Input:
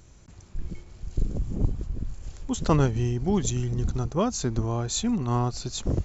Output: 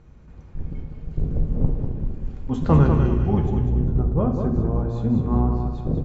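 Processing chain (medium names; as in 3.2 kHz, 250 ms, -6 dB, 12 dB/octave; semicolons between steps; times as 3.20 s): octave divider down 1 oct, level -1 dB; Bessel low-pass 1.7 kHz, order 2, from 3.40 s 750 Hz; feedback delay 197 ms, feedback 36%, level -6 dB; reverberation RT60 0.90 s, pre-delay 3 ms, DRR 3 dB; trim +1 dB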